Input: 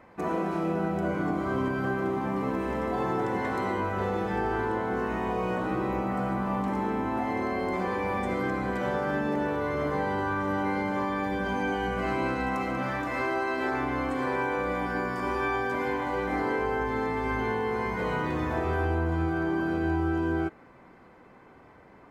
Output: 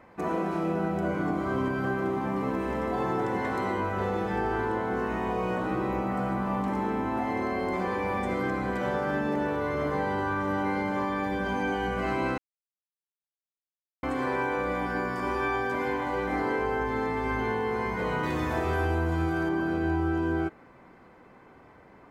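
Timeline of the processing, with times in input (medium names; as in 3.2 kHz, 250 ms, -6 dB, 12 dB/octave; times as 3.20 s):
12.38–14.03 s: mute
18.23–19.49 s: treble shelf 3.5 kHz +9 dB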